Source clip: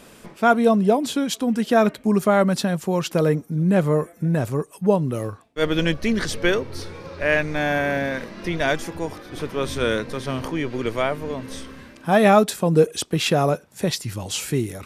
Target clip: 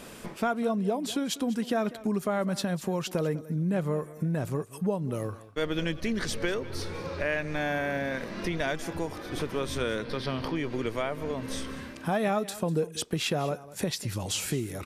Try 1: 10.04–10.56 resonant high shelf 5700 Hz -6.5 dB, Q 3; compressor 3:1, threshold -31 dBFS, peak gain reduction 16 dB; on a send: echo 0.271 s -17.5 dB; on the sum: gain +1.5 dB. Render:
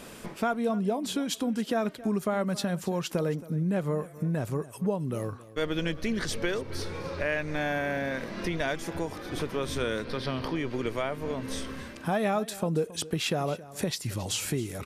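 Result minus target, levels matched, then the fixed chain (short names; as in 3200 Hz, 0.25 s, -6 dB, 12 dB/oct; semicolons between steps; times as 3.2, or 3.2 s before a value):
echo 74 ms late
10.04–10.56 resonant high shelf 5700 Hz -6.5 dB, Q 3; compressor 3:1, threshold -31 dBFS, peak gain reduction 16 dB; on a send: echo 0.197 s -17.5 dB; on the sum: gain +1.5 dB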